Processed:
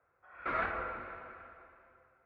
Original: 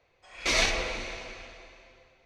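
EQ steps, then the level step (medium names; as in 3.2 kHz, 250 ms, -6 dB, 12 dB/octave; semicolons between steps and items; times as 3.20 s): high-pass 49 Hz 24 dB/octave; resonant low-pass 1.4 kHz, resonance Q 7.5; distance through air 300 m; -8.5 dB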